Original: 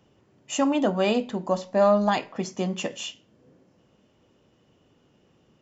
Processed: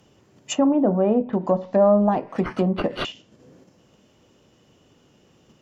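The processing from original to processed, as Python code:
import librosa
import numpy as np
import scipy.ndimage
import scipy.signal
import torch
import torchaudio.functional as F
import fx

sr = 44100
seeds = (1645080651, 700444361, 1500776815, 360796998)

p1 = fx.high_shelf(x, sr, hz=5700.0, db=11.0)
p2 = fx.resample_bad(p1, sr, factor=6, down='none', up='hold', at=(2.01, 3.05))
p3 = fx.level_steps(p2, sr, step_db=15)
p4 = p2 + (p3 * 10.0 ** (-2.0 / 20.0))
p5 = fx.air_absorb(p4, sr, metres=360.0, at=(0.69, 1.33))
p6 = fx.env_lowpass_down(p5, sr, base_hz=750.0, full_db=-19.0)
y = p6 * 10.0 ** (3.0 / 20.0)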